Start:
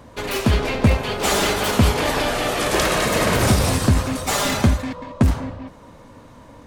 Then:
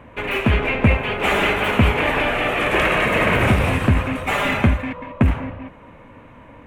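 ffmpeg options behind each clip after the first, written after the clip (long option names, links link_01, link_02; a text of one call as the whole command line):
ffmpeg -i in.wav -af "highshelf=frequency=3500:width_type=q:width=3:gain=-12" out.wav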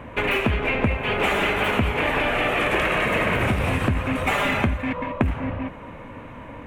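ffmpeg -i in.wav -af "acompressor=threshold=-24dB:ratio=6,volume=5dB" out.wav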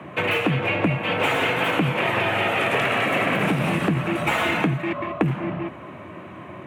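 ffmpeg -i in.wav -af "afreqshift=76" out.wav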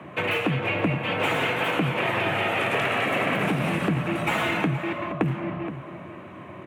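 ffmpeg -i in.wav -filter_complex "[0:a]asplit=2[link_01][link_02];[link_02]adelay=472.3,volume=-11dB,highshelf=frequency=4000:gain=-10.6[link_03];[link_01][link_03]amix=inputs=2:normalize=0,volume=-3dB" out.wav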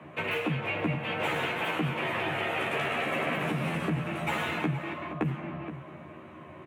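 ffmpeg -i in.wav -filter_complex "[0:a]asplit=2[link_01][link_02];[link_02]adelay=13,volume=-3dB[link_03];[link_01][link_03]amix=inputs=2:normalize=0,volume=-7.5dB" out.wav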